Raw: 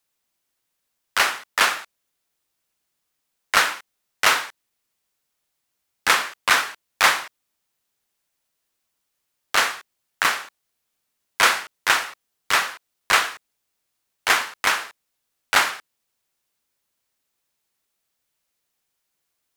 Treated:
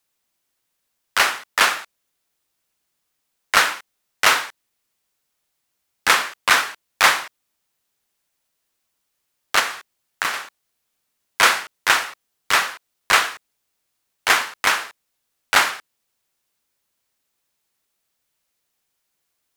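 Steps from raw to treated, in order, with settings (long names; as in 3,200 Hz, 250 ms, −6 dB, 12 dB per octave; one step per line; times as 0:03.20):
0:09.59–0:10.34: downward compressor 2.5 to 1, threshold −23 dBFS, peak gain reduction 6.5 dB
level +2 dB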